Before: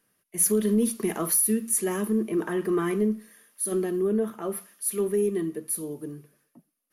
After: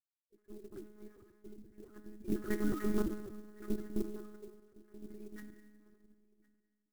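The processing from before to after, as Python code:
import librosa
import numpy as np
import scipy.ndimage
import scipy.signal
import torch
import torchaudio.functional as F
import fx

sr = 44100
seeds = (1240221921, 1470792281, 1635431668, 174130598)

y = fx.sine_speech(x, sr)
y = fx.doppler_pass(y, sr, speed_mps=8, closest_m=2.0, pass_at_s=2.98)
y = scipy.signal.sosfilt(scipy.signal.butter(4, 1600.0, 'lowpass', fs=sr, output='sos'), y)
y = fx.low_shelf(y, sr, hz=350.0, db=-6.5)
y = fx.level_steps(y, sr, step_db=17)
y = fx.pitch_keep_formants(y, sr, semitones=-4.5)
y = fx.fixed_phaser(y, sr, hz=330.0, stages=4)
y = y + 10.0 ** (-23.0 / 20.0) * np.pad(y, (int(1061 * sr / 1000.0), 0))[:len(y)]
y = fx.rev_plate(y, sr, seeds[0], rt60_s=1.5, hf_ratio=0.95, predelay_ms=0, drr_db=5.5)
y = fx.lpc_monotone(y, sr, seeds[1], pitch_hz=210.0, order=10)
y = fx.clock_jitter(y, sr, seeds[2], jitter_ms=0.042)
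y = F.gain(torch.from_numpy(y), 7.5).numpy()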